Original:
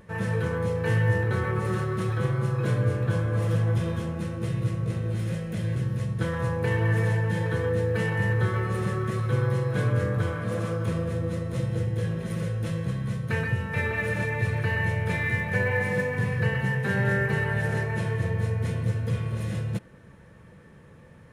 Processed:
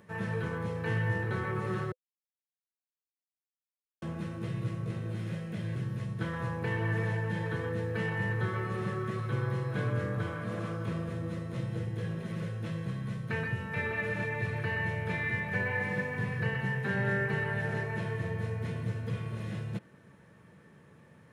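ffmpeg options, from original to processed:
ffmpeg -i in.wav -filter_complex "[0:a]asplit=3[link_01][link_02][link_03];[link_01]atrim=end=1.92,asetpts=PTS-STARTPTS,afade=type=out:start_time=1.916:duration=0.004:curve=hsin[link_04];[link_02]atrim=start=1.92:end=4.02,asetpts=PTS-STARTPTS,volume=0[link_05];[link_03]atrim=start=4.02,asetpts=PTS-STARTPTS,afade=type=in:duration=0.004:curve=hsin[link_06];[link_04][link_05][link_06]concat=n=3:v=0:a=1,highpass=120,bandreject=frequency=510:width=12,acrossover=split=4700[link_07][link_08];[link_08]acompressor=threshold=-59dB:ratio=4:attack=1:release=60[link_09];[link_07][link_09]amix=inputs=2:normalize=0,volume=-4.5dB" out.wav

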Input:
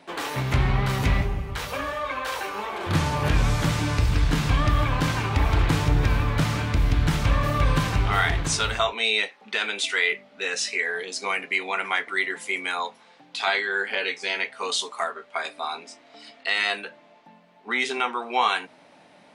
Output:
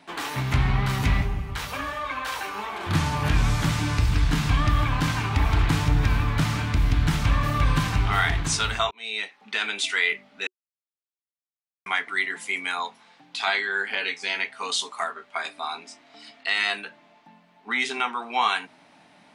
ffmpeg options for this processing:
ffmpeg -i in.wav -filter_complex "[0:a]asplit=4[link_01][link_02][link_03][link_04];[link_01]atrim=end=8.91,asetpts=PTS-STARTPTS,afade=type=out:start_time=8.906:duration=0.004:curve=hsin[link_05];[link_02]atrim=start=8.91:end=10.47,asetpts=PTS-STARTPTS,afade=type=in:duration=0.81:curve=qsin,afade=type=out:start_time=1.556:duration=0.004:curve=hsin[link_06];[link_03]atrim=start=10.47:end=11.86,asetpts=PTS-STARTPTS,volume=0[link_07];[link_04]atrim=start=11.86,asetpts=PTS-STARTPTS,afade=type=in:duration=0.004:curve=hsin[link_08];[link_05][link_06][link_07][link_08]concat=n=4:v=0:a=1,equalizer=frequency=520:width=2.9:gain=-9,bandreject=frequency=370:width=12" out.wav

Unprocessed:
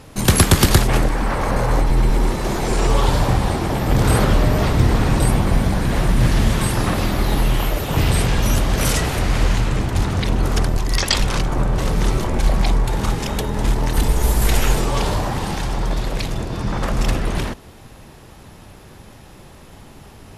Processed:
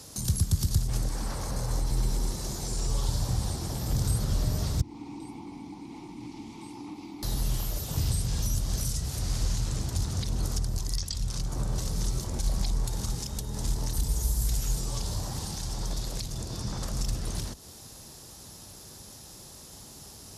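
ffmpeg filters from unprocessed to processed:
ffmpeg -i in.wav -filter_complex "[0:a]asettb=1/sr,asplit=3[link_01][link_02][link_03];[link_01]atrim=end=4.814[link_04];[link_02]atrim=start=4.81:end=7.23,asetpts=PTS-STARTPTS,afade=type=in:duration=0.004:curve=qsin,afade=type=out:start_time=2.416:duration=0.004:curve=qsin,asplit=3[link_05][link_06][link_07];[link_05]bandpass=frequency=300:width_type=q:width=8,volume=0dB[link_08];[link_06]bandpass=frequency=870:width_type=q:width=8,volume=-6dB[link_09];[link_07]bandpass=frequency=2240:width_type=q:width=8,volume=-9dB[link_10];[link_08][link_09][link_10]amix=inputs=3:normalize=0[link_11];[link_03]atrim=start=7.226[link_12];[link_04][link_11]acrossfade=duration=0.004:curve1=hsin:curve2=qsin[link_13];[link_13][link_12]acrossfade=duration=0.004:curve1=qsin:curve2=hsin,highpass=40,highshelf=frequency=3600:width_type=q:width=1.5:gain=13.5,acrossover=split=160[link_14][link_15];[link_15]acompressor=threshold=-29dB:ratio=4[link_16];[link_14][link_16]amix=inputs=2:normalize=0,volume=-8.5dB" out.wav

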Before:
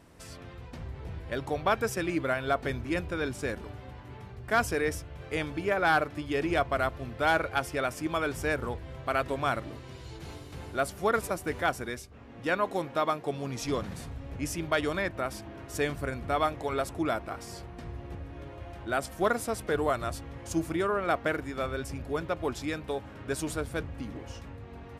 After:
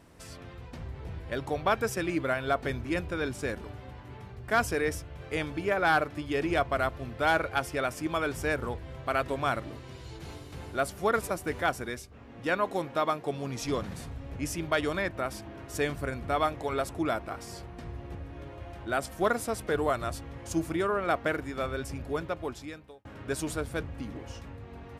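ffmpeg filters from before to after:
ffmpeg -i in.wav -filter_complex "[0:a]asplit=2[link_01][link_02];[link_01]atrim=end=23.05,asetpts=PTS-STARTPTS,afade=type=out:start_time=22.13:duration=0.92[link_03];[link_02]atrim=start=23.05,asetpts=PTS-STARTPTS,afade=type=in:duration=0.004:curve=hsin[link_04];[link_03][link_04]concat=n=2:v=0:a=1" out.wav

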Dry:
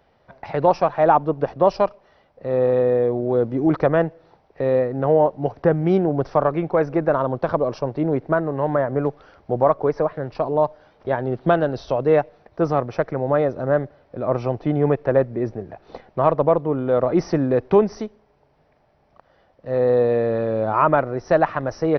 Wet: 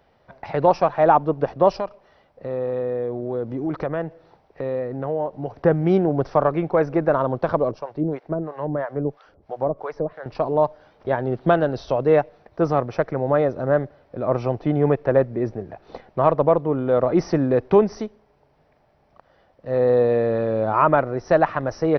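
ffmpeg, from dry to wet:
ffmpeg -i in.wav -filter_complex "[0:a]asettb=1/sr,asplit=3[link_01][link_02][link_03];[link_01]atrim=end=1.784[link_04];[link_02]atrim=start=1.78:end=5.56,asetpts=PTS-STARTPTS,afade=type=in:duration=0.004:curve=qsin,afade=type=out:start_time=3.776:duration=0.004:curve=qsin,acompressor=threshold=-27dB:ratio=2:attack=3.2:release=140:knee=1:detection=peak[link_05];[link_03]atrim=start=5.556[link_06];[link_04][link_05]acrossfade=duration=0.004:curve1=hsin:curve2=qsin[link_07];[link_07][link_06]acrossfade=duration=0.004:curve1=qsin:curve2=hsin,asettb=1/sr,asplit=3[link_08][link_09][link_10];[link_08]atrim=end=7.714[link_11];[link_09]atrim=start=7.71:end=10.26,asetpts=PTS-STARTPTS,afade=type=in:duration=0.004:curve=qsin,afade=type=out:start_time=2.546:duration=0.004:curve=qsin,acrossover=split=590[link_12][link_13];[link_12]aeval=exprs='val(0)*(1-1/2+1/2*cos(2*PI*3*n/s))':channel_layout=same[link_14];[link_13]aeval=exprs='val(0)*(1-1/2-1/2*cos(2*PI*3*n/s))':channel_layout=same[link_15];[link_14][link_15]amix=inputs=2:normalize=0[link_16];[link_10]atrim=start=10.256[link_17];[link_11][link_16]acrossfade=duration=0.004:curve1=hsin:curve2=qsin[link_18];[link_18][link_17]acrossfade=duration=0.004:curve1=qsin:curve2=hsin" out.wav

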